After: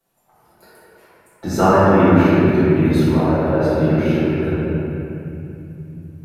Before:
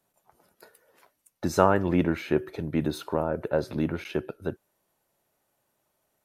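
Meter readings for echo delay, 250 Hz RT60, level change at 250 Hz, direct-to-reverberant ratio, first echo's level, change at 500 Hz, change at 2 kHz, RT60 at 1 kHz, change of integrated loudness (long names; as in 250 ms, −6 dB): no echo audible, 4.2 s, +13.0 dB, −13.0 dB, no echo audible, +10.5 dB, +10.5 dB, 2.6 s, +11.5 dB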